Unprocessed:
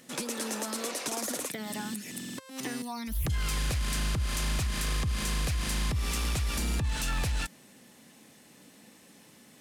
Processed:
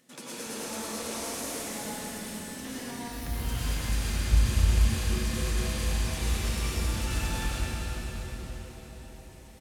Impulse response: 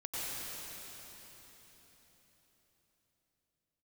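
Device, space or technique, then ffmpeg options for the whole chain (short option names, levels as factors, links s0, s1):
cathedral: -filter_complex "[1:a]atrim=start_sample=2205[s0];[0:a][s0]afir=irnorm=-1:irlink=0,asettb=1/sr,asplit=3[s1][s2][s3];[s1]atrim=end=4.314[s4];[s2]atrim=start=4.31:end=4.94,asetpts=PTS-STARTPTS,afade=t=in:d=0.004:c=qsin,afade=t=out:st=0.626:d=0.004:c=qsin,equalizer=f=69:w=0.81:g=9.5[s5];[s3]atrim=start=4.936[s6];[s4][s5]acrossfade=d=0.004:c1=hsin:c2=qsin[s7];[s7][s6]acrossfade=d=0.004:c1=qsin:c2=hsin,asplit=8[s8][s9][s10][s11][s12][s13][s14][s15];[s9]adelay=261,afreqshift=-140,volume=0.2[s16];[s10]adelay=522,afreqshift=-280,volume=0.127[s17];[s11]adelay=783,afreqshift=-420,volume=0.0813[s18];[s12]adelay=1044,afreqshift=-560,volume=0.0525[s19];[s13]adelay=1305,afreqshift=-700,volume=0.0335[s20];[s14]adelay=1566,afreqshift=-840,volume=0.0214[s21];[s15]adelay=1827,afreqshift=-980,volume=0.0136[s22];[s8][s16][s17][s18][s19][s20][s21][s22]amix=inputs=8:normalize=0,volume=0.596"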